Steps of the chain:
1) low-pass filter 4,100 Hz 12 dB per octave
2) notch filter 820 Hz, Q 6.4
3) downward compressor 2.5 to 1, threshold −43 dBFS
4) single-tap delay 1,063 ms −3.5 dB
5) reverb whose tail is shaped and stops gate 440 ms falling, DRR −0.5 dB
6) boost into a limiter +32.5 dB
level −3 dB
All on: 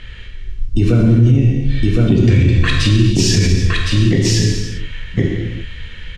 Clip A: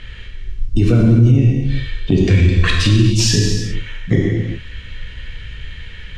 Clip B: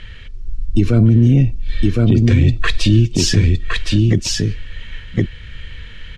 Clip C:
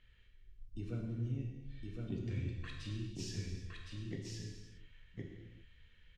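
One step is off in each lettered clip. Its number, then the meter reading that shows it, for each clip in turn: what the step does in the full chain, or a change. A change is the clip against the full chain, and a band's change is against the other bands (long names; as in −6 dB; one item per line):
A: 4, change in momentary loudness spread +6 LU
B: 5, change in momentary loudness spread +4 LU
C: 6, change in crest factor +5.5 dB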